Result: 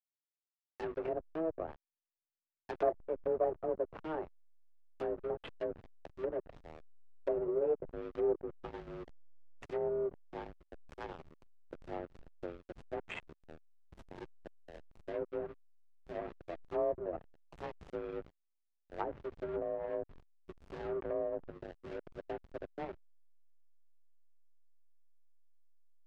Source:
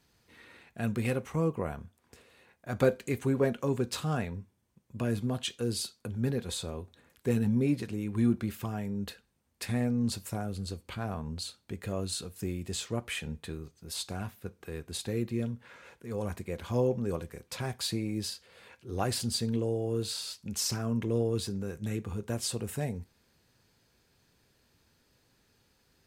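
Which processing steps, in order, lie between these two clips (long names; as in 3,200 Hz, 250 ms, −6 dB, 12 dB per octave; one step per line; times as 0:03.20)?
in parallel at −8 dB: comparator with hysteresis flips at −32 dBFS
on the sum: harmonic generator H 5 −12 dB, 6 −16 dB, 7 −22 dB, 8 −30 dB, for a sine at −10.5 dBFS
single-sideband voice off tune +160 Hz 200–2,800 Hz
slack as between gear wheels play −25.5 dBFS
treble cut that deepens with the level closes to 780 Hz, closed at −25 dBFS
level −7 dB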